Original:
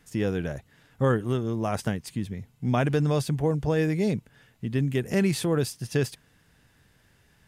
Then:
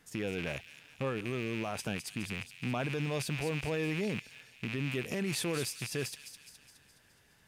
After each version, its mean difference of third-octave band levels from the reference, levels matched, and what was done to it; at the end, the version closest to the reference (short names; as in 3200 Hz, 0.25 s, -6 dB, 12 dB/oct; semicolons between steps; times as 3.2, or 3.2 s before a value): 8.0 dB: rattling part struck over -36 dBFS, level -24 dBFS; limiter -21.5 dBFS, peak gain reduction 10 dB; low shelf 180 Hz -8 dB; on a send: thin delay 0.209 s, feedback 54%, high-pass 3100 Hz, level -7 dB; on the sum: gain -2 dB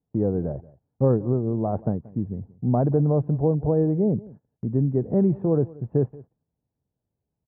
10.5 dB: inverse Chebyshev low-pass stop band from 4700 Hz, stop band 80 dB; gate -51 dBFS, range -22 dB; HPF 47 Hz; on a send: echo 0.181 s -21.5 dB; on the sum: gain +3.5 dB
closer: first